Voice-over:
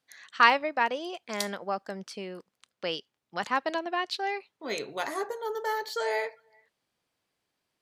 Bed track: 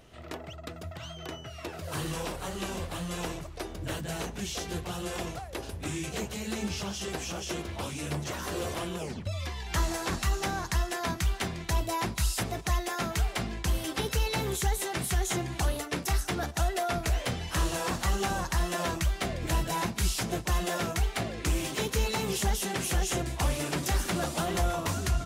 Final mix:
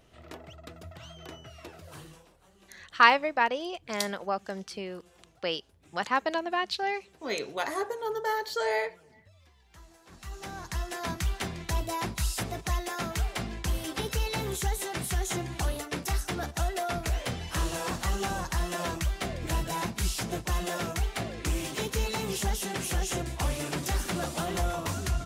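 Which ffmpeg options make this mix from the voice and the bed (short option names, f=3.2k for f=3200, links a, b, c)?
-filter_complex "[0:a]adelay=2600,volume=1dB[a];[1:a]volume=18.5dB,afade=t=out:st=1.5:d=0.75:silence=0.1,afade=t=in:st=10.07:d=1.08:silence=0.0668344[b];[a][b]amix=inputs=2:normalize=0"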